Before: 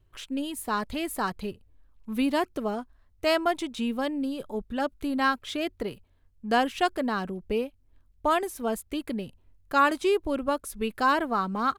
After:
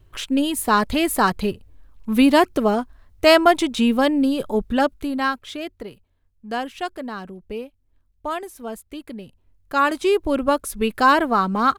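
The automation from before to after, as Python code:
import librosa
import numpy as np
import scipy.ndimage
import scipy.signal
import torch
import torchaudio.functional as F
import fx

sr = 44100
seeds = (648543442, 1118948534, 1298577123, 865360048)

y = fx.gain(x, sr, db=fx.line((4.76, 11.0), (5.07, 4.0), (5.89, -3.0), (9.17, -3.0), (10.39, 8.0)))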